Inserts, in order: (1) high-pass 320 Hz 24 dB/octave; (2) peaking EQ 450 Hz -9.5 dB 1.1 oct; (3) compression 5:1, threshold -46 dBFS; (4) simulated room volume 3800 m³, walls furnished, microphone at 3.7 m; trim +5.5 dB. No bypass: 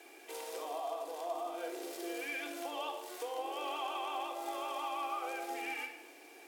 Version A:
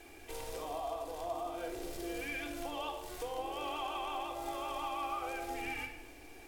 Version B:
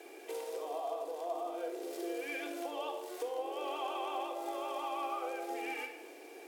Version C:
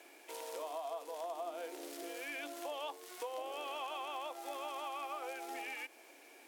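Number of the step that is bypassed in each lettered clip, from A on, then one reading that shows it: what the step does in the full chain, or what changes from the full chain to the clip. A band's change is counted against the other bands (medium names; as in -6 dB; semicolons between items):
1, 250 Hz band +2.5 dB; 2, 500 Hz band +5.0 dB; 4, echo-to-direct -0.5 dB to none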